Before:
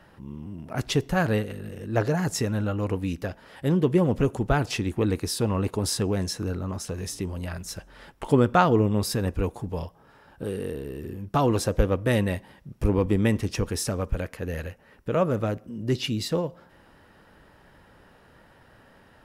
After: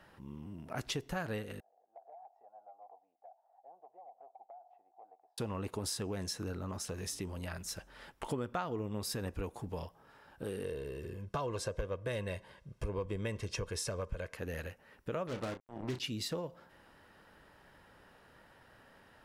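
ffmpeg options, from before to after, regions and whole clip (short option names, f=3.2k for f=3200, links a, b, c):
-filter_complex "[0:a]asettb=1/sr,asplit=3[a][b][c];[a]atrim=end=1.604[d];[b]atrim=start=1.6:end=5.38,asetpts=PTS-STARTPTS,afade=t=in:d=0.004:c=qsin,afade=t=out:st=3.776:d=0.004:c=qsin,asuperpass=centerf=740:order=4:qfactor=6.2,acompressor=threshold=-43dB:ratio=16:attack=3.2:release=140:knee=1:detection=peak[e];[c]atrim=start=5.376[f];[d][e]acrossfade=d=0.004:c1=hsin:c2=qsin[g];[g][f]acrossfade=d=0.004:c1=qsin:c2=hsin,asettb=1/sr,asplit=3[h][i][j];[h]atrim=end=10.644[k];[i]atrim=start=10.64:end=14.35,asetpts=PTS-STARTPTS,afade=t=in:d=0.004:c=qsin,afade=t=out:st=3.706:d=0.004:c=qsin,lowpass=9k,aecho=1:1:1.9:0.54,atrim=end_sample=163611,asoftclip=type=hard:threshold=-7.5dB[l];[j]atrim=start=14.346[m];[k][l]acrossfade=d=0.004:c1=hsin:c2=qsin[n];[n][m]acrossfade=d=0.004:c1=qsin:c2=hsin,asettb=1/sr,asplit=3[o][p][q];[o]atrim=end=15.274[r];[p]atrim=start=15.27:end=16,asetpts=PTS-STARTPTS,afade=t=in:d=0.004:c=qsin,afade=t=out:st=0.726:d=0.004:c=qsin,aemphasis=mode=reproduction:type=75kf,acrusher=bits=4:mix=0:aa=0.5,asplit=2[s][t];[t]adelay=32,volume=-9dB[u];[s][u]amix=inputs=2:normalize=0,atrim=end_sample=32193[v];[q]atrim=start=15.996[w];[r][v]acrossfade=d=0.004:c1=hsin:c2=qsin[x];[x][w]acrossfade=d=0.004:c1=qsin:c2=hsin,lowshelf=f=450:g=-5.5,acompressor=threshold=-31dB:ratio=4,volume=-4dB"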